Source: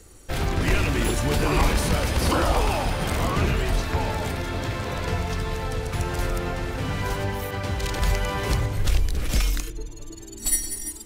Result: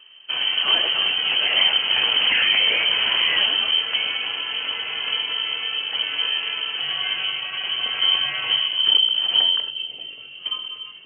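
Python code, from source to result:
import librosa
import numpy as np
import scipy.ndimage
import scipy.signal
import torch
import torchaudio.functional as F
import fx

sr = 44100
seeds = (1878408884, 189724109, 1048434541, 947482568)

y = fx.freq_invert(x, sr, carrier_hz=3100)
y = fx.highpass(y, sr, hz=340.0, slope=6)
y = fx.doubler(y, sr, ms=21.0, db=-14.0)
y = fx.echo_bbd(y, sr, ms=580, stages=2048, feedback_pct=70, wet_db=-9.5)
y = fx.env_flatten(y, sr, amount_pct=50, at=(1.96, 3.47))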